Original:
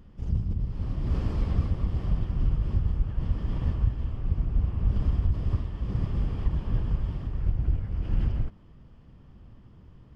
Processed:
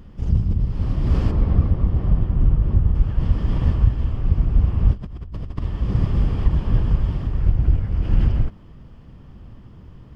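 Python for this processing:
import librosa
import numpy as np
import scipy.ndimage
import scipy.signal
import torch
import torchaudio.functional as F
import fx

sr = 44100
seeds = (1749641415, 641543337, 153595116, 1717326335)

y = fx.lowpass(x, sr, hz=1200.0, slope=6, at=(1.3, 2.94), fade=0.02)
y = fx.over_compress(y, sr, threshold_db=-38.0, ratio=-1.0, at=(4.92, 5.61), fade=0.02)
y = F.gain(torch.from_numpy(y), 8.5).numpy()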